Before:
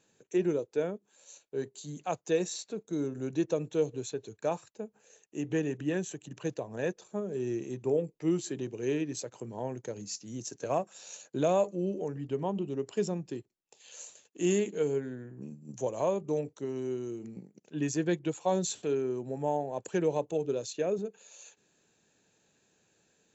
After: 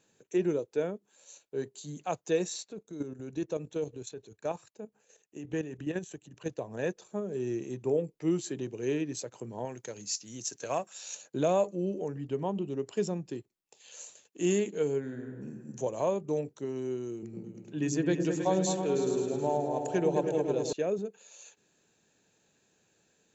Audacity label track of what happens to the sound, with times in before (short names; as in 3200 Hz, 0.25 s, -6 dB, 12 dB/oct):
2.630000	6.580000	level quantiser steps of 10 dB
9.650000	11.150000	tilt shelf lows -5.5 dB
14.990000	15.580000	reverb throw, RT60 1.8 s, DRR 2.5 dB
17.120000	20.730000	repeats that get brighter 0.106 s, low-pass from 400 Hz, each repeat up 2 oct, level -3 dB